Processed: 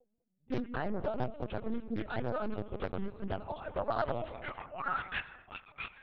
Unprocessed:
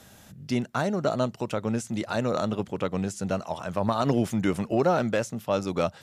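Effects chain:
spectral magnitudes quantised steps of 15 dB
noise reduction from a noise print of the clip's start 25 dB
low-shelf EQ 400 Hz −6 dB
reversed playback
upward compression, threshold −37 dBFS
reversed playback
high-pass filter sweep 210 Hz → 2,100 Hz, 0:03.22–0:05.34
delay with a band-pass on its return 198 ms, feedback 33%, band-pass 540 Hz, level −14 dB
on a send at −15 dB: convolution reverb RT60 1.8 s, pre-delay 67 ms
on the sum: low-pass that shuts in the quiet parts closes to 300 Hz, open at −27 dBFS
linear-prediction vocoder at 8 kHz pitch kept
highs frequency-modulated by the lows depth 0.72 ms
level −7 dB

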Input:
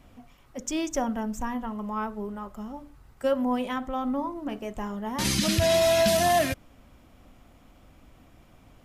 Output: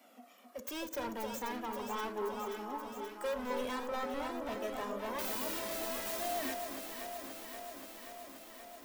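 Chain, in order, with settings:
stylus tracing distortion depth 0.29 ms
Butterworth high-pass 220 Hz 72 dB per octave
high-shelf EQ 11,000 Hz +10.5 dB
brickwall limiter −19.5 dBFS, peak gain reduction 12.5 dB
gain into a clipping stage and back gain 33 dB
flanger 0.23 Hz, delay 1.4 ms, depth 1.3 ms, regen +19%
delay that swaps between a low-pass and a high-pass 264 ms, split 1,400 Hz, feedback 85%, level −5 dB
every ending faded ahead of time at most 170 dB per second
level +1 dB

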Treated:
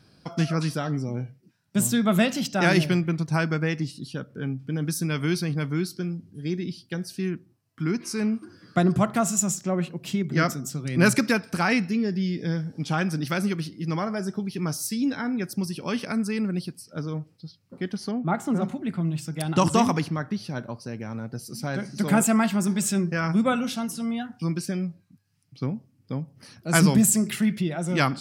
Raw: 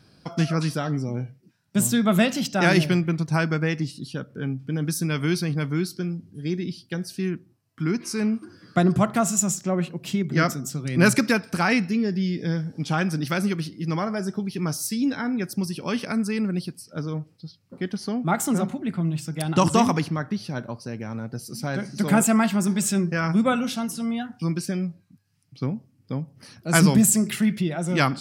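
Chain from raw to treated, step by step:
0:18.11–0:18.62: low-pass filter 1,600 Hz 6 dB per octave
level −1.5 dB

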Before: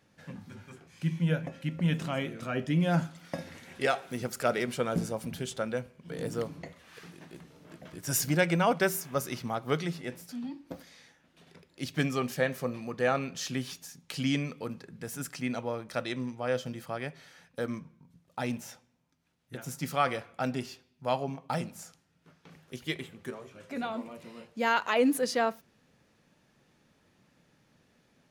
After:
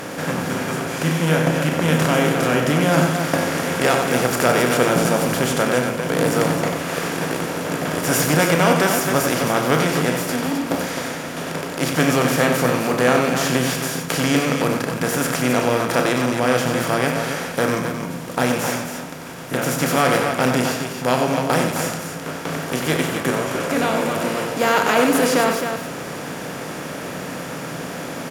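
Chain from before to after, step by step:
compressor on every frequency bin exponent 0.4
loudspeakers that aren't time-aligned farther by 11 metres −10 dB, 32 metres −7 dB, 90 metres −7 dB
level +3.5 dB

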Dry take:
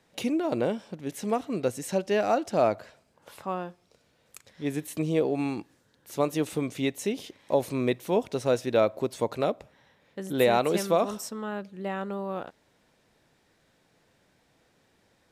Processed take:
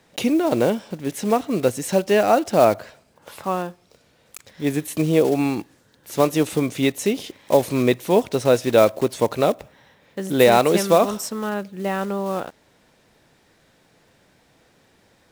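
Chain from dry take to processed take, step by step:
one scale factor per block 5 bits
level +8 dB

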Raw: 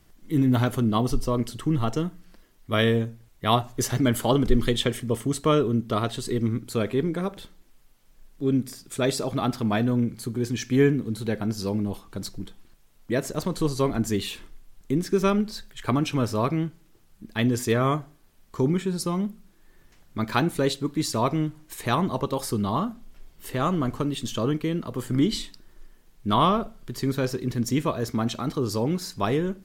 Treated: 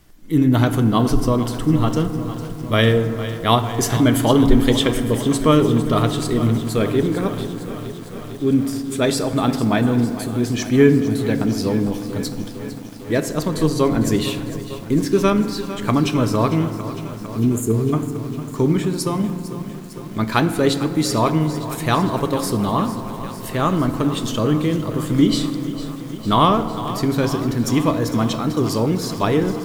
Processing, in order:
healed spectral selection 0:17.32–0:17.91, 460–6,300 Hz before
feedback delay network reverb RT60 2.7 s, low-frequency decay 1.25×, high-frequency decay 0.35×, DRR 9.5 dB
feedback echo at a low word length 453 ms, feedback 80%, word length 7 bits, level −13.5 dB
level +5.5 dB

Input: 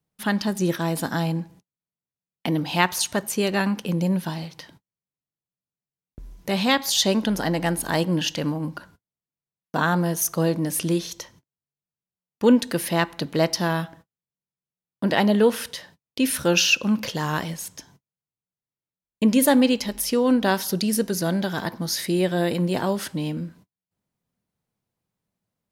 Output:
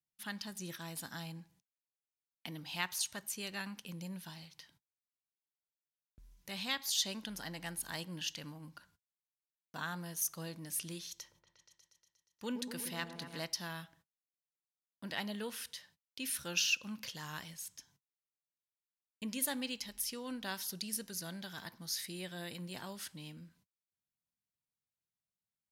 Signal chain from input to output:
guitar amp tone stack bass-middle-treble 5-5-5
0:11.11–0:13.45: echo whose low-pass opens from repeat to repeat 119 ms, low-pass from 750 Hz, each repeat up 1 octave, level −6 dB
level −5 dB

